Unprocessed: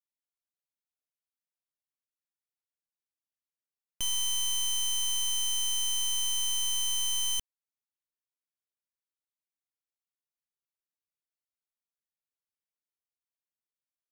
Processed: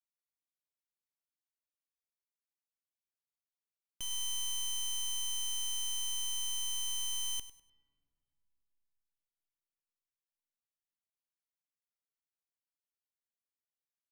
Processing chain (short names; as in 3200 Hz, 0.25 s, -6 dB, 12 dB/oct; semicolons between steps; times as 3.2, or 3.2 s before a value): feedback echo 0.1 s, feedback 32%, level -15 dB; on a send at -22 dB: reverb RT60 2.5 s, pre-delay 34 ms; on the sum: gain -8.5 dB